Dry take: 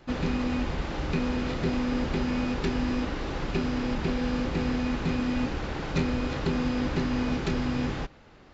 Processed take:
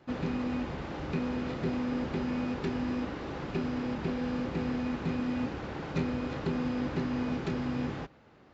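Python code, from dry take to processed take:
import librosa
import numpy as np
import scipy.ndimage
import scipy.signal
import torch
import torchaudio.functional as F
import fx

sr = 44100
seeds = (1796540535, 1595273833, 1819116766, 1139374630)

y = scipy.signal.sosfilt(scipy.signal.butter(2, 87.0, 'highpass', fs=sr, output='sos'), x)
y = fx.high_shelf(y, sr, hz=2600.0, db=-7.5)
y = F.gain(torch.from_numpy(y), -3.5).numpy()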